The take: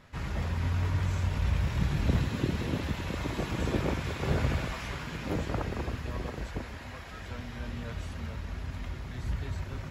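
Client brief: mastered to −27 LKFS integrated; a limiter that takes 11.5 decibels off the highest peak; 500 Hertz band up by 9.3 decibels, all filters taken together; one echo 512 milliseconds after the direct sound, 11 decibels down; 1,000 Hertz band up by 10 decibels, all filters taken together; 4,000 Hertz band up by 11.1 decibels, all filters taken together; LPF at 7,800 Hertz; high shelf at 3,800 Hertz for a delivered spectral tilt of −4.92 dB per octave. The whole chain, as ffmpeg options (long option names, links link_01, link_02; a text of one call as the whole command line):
ffmpeg -i in.wav -af "lowpass=7800,equalizer=frequency=500:width_type=o:gain=9,equalizer=frequency=1000:width_type=o:gain=8.5,highshelf=frequency=3800:gain=8.5,equalizer=frequency=4000:width_type=o:gain=8.5,alimiter=limit=-21.5dB:level=0:latency=1,aecho=1:1:512:0.282,volume=5dB" out.wav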